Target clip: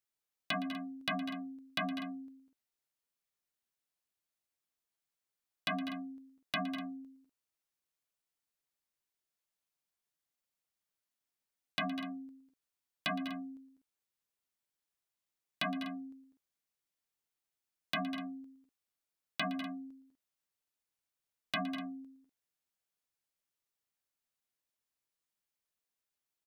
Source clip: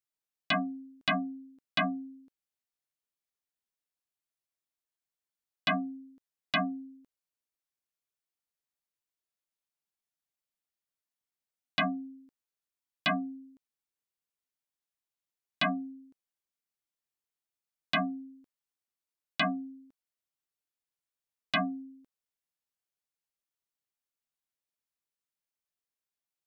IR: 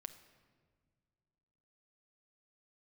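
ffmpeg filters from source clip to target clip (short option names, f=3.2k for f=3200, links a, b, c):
-af "acompressor=threshold=-34dB:ratio=6,volume=27.5dB,asoftclip=hard,volume=-27.5dB,aecho=1:1:115|198|208|247:0.158|0.251|0.133|0.158,volume=1dB"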